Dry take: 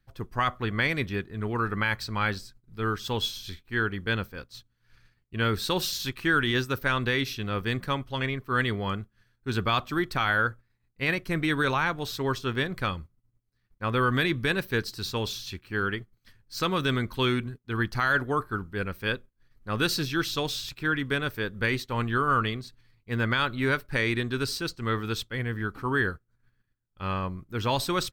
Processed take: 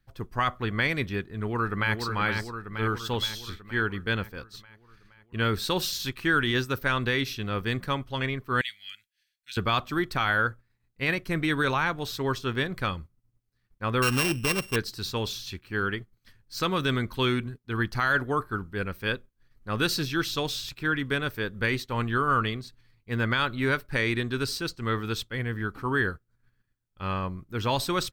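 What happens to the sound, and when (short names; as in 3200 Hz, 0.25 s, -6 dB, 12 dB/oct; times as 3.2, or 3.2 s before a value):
1.31–1.97 echo throw 0.47 s, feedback 60%, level -5 dB
8.61–9.57 inverse Chebyshev high-pass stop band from 1100 Hz
14.02–14.76 sample sorter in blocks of 16 samples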